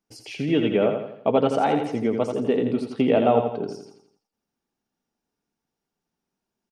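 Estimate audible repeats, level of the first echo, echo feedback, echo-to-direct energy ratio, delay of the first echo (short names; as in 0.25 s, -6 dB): 5, -6.0 dB, 46%, -5.0 dB, 84 ms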